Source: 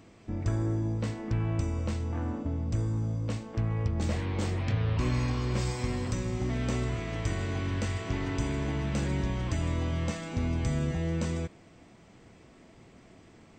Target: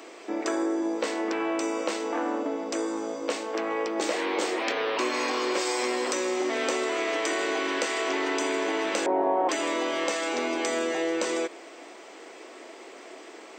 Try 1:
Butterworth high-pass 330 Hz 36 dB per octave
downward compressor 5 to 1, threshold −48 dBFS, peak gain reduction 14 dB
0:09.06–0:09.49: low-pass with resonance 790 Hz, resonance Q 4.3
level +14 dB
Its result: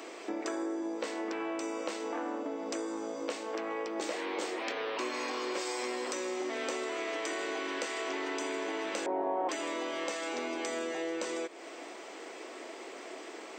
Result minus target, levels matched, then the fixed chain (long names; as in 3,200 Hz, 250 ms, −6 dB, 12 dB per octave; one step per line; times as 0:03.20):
downward compressor: peak gain reduction +8 dB
Butterworth high-pass 330 Hz 36 dB per octave
downward compressor 5 to 1, threshold −38 dBFS, peak gain reduction 6 dB
0:09.06–0:09.49: low-pass with resonance 790 Hz, resonance Q 4.3
level +14 dB